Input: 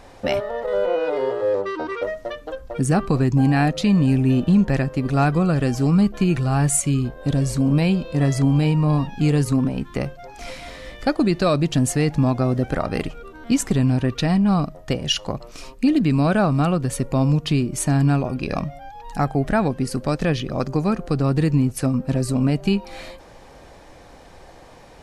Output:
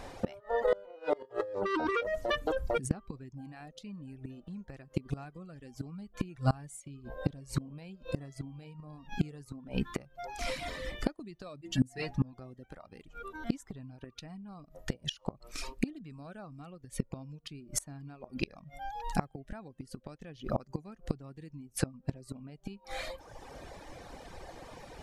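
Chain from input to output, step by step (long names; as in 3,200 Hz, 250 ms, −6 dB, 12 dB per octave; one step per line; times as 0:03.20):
0:11.61–0:12.33: stiff-string resonator 61 Hz, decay 0.32 s, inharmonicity 0.008
reverb reduction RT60 1 s
0:01.25–0:02.91: compressor whose output falls as the input rises −33 dBFS, ratio −1
gate with flip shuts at −16 dBFS, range −27 dB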